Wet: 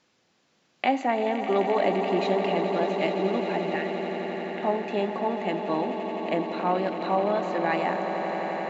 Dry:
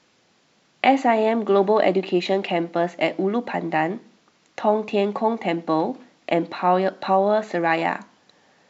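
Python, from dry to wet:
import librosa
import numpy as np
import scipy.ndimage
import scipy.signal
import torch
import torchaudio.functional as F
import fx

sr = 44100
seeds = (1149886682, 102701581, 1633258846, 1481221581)

y = fx.brickwall_bandpass(x, sr, low_hz=1400.0, high_hz=3900.0, at=(3.76, 4.63))
y = fx.echo_swell(y, sr, ms=86, loudest=8, wet_db=-12.5)
y = y * 10.0 ** (-7.0 / 20.0)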